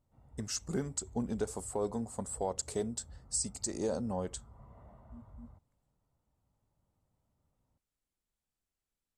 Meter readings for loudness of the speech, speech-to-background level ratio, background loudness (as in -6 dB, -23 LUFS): -36.5 LUFS, 20.0 dB, -56.5 LUFS